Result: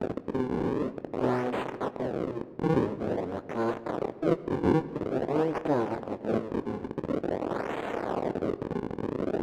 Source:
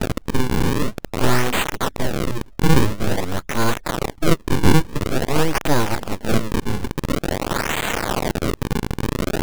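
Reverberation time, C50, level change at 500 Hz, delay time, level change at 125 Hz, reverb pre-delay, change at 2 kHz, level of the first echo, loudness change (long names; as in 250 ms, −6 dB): 1.9 s, 16.0 dB, −4.5 dB, no echo audible, −14.0 dB, 20 ms, −15.5 dB, no echo audible, −8.5 dB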